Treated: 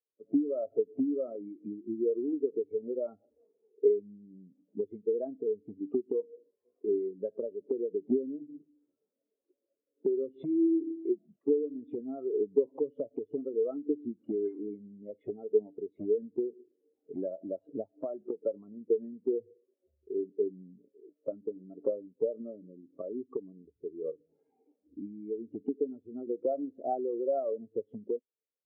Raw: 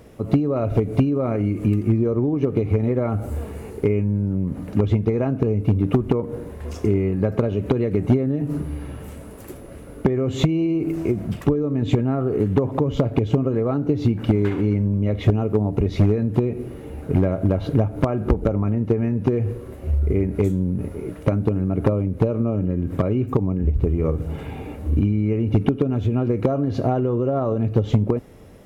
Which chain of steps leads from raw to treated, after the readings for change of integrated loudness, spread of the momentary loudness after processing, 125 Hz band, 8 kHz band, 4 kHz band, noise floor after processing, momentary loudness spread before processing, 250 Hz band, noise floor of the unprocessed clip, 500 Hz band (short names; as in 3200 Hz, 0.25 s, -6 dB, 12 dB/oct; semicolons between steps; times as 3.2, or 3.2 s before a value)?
-12.0 dB, 13 LU, -38.0 dB, n/a, under -40 dB, under -85 dBFS, 8 LU, -14.0 dB, -38 dBFS, -7.5 dB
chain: BPF 330–3400 Hz; spectral expander 2.5:1; gain -7 dB